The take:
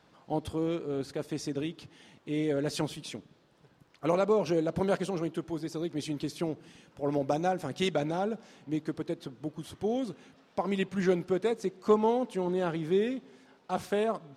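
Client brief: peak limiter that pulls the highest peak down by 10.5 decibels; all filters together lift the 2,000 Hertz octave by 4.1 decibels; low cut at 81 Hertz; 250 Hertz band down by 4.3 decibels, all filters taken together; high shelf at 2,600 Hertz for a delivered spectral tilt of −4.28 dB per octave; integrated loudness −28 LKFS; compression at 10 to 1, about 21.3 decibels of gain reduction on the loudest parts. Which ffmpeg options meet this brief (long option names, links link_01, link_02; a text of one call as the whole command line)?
ffmpeg -i in.wav -af "highpass=81,equalizer=frequency=250:width_type=o:gain=-6.5,equalizer=frequency=2000:width_type=o:gain=3.5,highshelf=frequency=2600:gain=4,acompressor=threshold=-42dB:ratio=10,volume=21.5dB,alimiter=limit=-16.5dB:level=0:latency=1" out.wav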